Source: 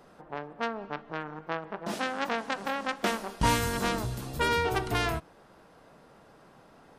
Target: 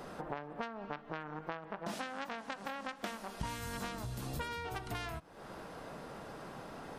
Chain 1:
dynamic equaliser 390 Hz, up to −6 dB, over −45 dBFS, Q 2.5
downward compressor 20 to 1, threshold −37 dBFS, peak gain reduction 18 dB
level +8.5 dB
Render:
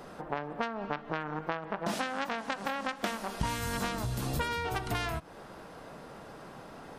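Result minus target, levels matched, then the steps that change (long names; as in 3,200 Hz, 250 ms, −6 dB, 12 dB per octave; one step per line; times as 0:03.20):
downward compressor: peak gain reduction −7.5 dB
change: downward compressor 20 to 1, threshold −45 dBFS, peak gain reduction 26 dB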